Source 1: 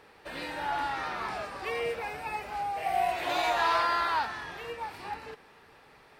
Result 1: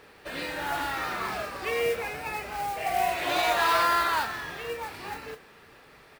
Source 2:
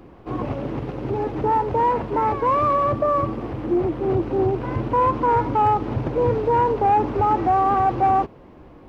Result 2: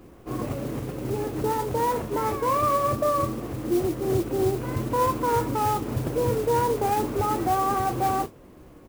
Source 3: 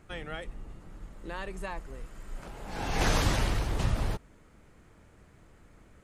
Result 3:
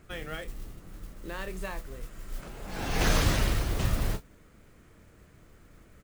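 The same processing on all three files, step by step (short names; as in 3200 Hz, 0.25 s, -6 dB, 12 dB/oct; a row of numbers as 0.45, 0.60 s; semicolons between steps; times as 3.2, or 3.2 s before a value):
doubler 32 ms -11 dB; modulation noise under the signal 19 dB; bell 860 Hz -5.5 dB 0.43 oct; normalise peaks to -12 dBFS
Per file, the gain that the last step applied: +4.0, -3.5, +1.0 dB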